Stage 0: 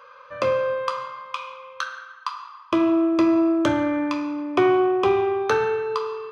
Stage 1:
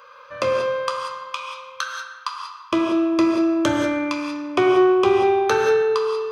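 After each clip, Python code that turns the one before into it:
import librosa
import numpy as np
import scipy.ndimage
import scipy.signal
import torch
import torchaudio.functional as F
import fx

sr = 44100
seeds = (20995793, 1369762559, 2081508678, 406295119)

y = fx.high_shelf(x, sr, hz=4400.0, db=10.0)
y = fx.rev_gated(y, sr, seeds[0], gate_ms=210, shape='rising', drr_db=4.0)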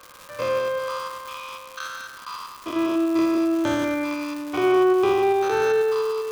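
y = fx.spec_steps(x, sr, hold_ms=100)
y = fx.dmg_crackle(y, sr, seeds[1], per_s=460.0, level_db=-29.0)
y = F.gain(torch.from_numpy(y), -2.0).numpy()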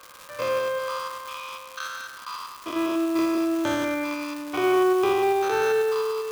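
y = fx.low_shelf(x, sr, hz=390.0, db=-5.0)
y = fx.quant_companded(y, sr, bits=6)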